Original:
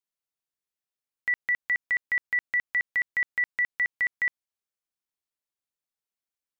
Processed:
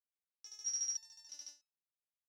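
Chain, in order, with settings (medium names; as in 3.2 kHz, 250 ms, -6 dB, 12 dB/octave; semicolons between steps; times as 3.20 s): wide varispeed 2.88×; resonator arpeggio 3.1 Hz 95–1300 Hz; trim +1 dB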